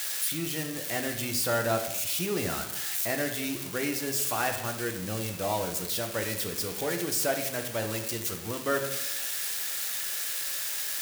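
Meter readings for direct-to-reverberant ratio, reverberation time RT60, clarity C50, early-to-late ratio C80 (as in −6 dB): 4.0 dB, 0.95 s, 8.5 dB, 10.5 dB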